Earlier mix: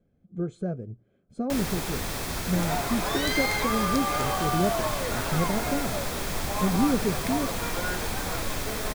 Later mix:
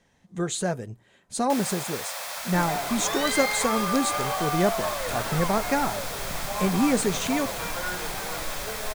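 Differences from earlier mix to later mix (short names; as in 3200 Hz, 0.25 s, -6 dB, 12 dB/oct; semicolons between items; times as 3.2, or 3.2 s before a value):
speech: remove running mean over 47 samples; first sound: add steep high-pass 510 Hz 96 dB/oct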